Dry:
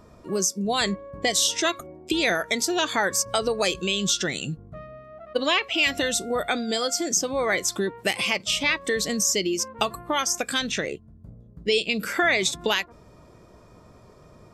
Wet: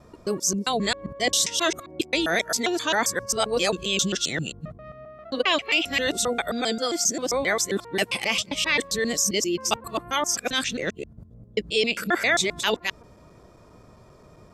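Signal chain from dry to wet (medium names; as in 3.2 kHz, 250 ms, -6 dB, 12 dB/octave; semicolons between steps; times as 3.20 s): time reversed locally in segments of 133 ms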